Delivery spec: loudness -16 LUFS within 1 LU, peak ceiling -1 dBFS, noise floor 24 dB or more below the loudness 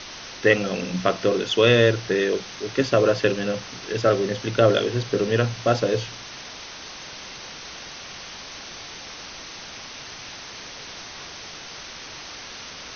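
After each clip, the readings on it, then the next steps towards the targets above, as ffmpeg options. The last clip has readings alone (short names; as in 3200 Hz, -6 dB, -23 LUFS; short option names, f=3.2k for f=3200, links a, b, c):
noise floor -39 dBFS; noise floor target -46 dBFS; loudness -22.0 LUFS; peak -2.5 dBFS; loudness target -16.0 LUFS
-> -af "afftdn=nr=7:nf=-39"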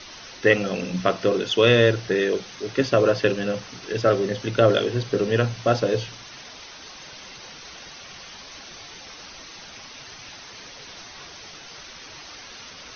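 noise floor -42 dBFS; noise floor target -46 dBFS
-> -af "afftdn=nr=6:nf=-42"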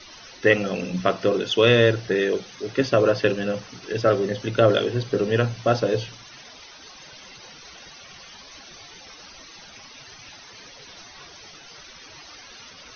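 noise floor -45 dBFS; noise floor target -46 dBFS
-> -af "afftdn=nr=6:nf=-45"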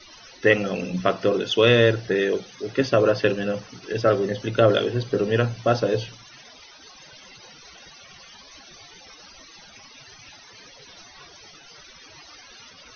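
noise floor -48 dBFS; loudness -22.0 LUFS; peak -2.5 dBFS; loudness target -16.0 LUFS
-> -af "volume=6dB,alimiter=limit=-1dB:level=0:latency=1"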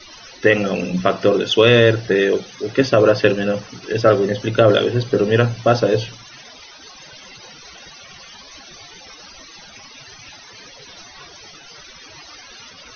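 loudness -16.5 LUFS; peak -1.0 dBFS; noise floor -42 dBFS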